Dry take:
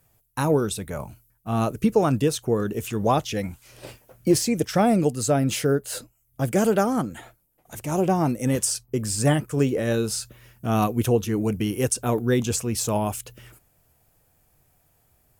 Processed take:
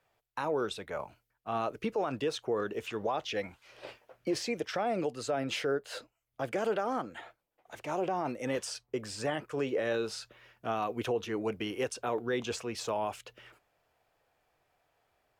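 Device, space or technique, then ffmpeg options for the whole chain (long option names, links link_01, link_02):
DJ mixer with the lows and highs turned down: -filter_complex "[0:a]acrossover=split=380 4600:gain=0.141 1 0.0794[link_01][link_02][link_03];[link_01][link_02][link_03]amix=inputs=3:normalize=0,alimiter=limit=-20.5dB:level=0:latency=1:release=51,volume=-2dB"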